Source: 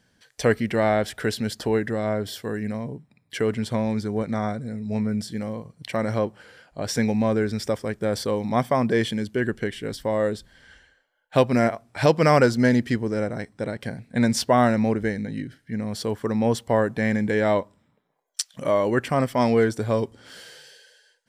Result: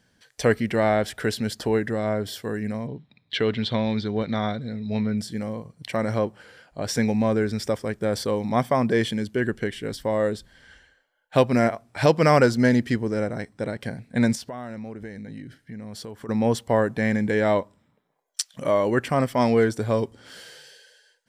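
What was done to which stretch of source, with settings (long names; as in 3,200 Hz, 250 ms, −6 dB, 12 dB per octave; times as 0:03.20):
0:02.87–0:05.18: low-pass with resonance 3,700 Hz, resonance Q 4.6
0:14.35–0:16.29: downward compressor 4 to 1, threshold −35 dBFS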